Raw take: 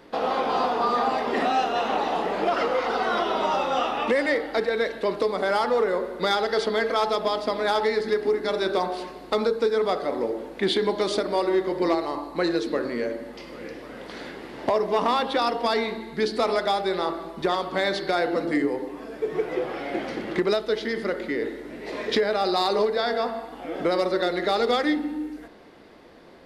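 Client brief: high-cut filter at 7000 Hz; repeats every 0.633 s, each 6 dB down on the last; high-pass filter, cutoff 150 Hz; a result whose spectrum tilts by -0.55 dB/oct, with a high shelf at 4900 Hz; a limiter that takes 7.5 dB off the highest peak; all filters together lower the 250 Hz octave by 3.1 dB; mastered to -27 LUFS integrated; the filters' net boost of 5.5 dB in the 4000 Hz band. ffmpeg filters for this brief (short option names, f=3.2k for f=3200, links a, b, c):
-af "highpass=150,lowpass=7k,equalizer=f=250:t=o:g=-4,equalizer=f=4k:t=o:g=8,highshelf=f=4.9k:g=-3,alimiter=limit=-15.5dB:level=0:latency=1,aecho=1:1:633|1266|1899|2532|3165|3798:0.501|0.251|0.125|0.0626|0.0313|0.0157,volume=-1.5dB"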